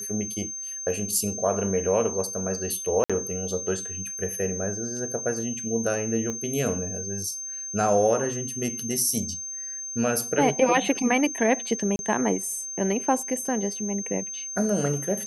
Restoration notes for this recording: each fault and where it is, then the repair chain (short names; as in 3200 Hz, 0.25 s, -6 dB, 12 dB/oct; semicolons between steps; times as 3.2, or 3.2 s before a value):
tone 6300 Hz -32 dBFS
3.04–3.1 gap 56 ms
6.3 pop -19 dBFS
11.96–11.99 gap 31 ms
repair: de-click; notch 6300 Hz, Q 30; interpolate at 3.04, 56 ms; interpolate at 11.96, 31 ms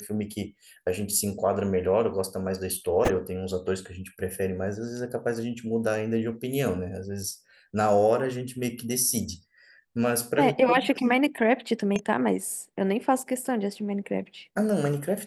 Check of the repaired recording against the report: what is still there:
6.3 pop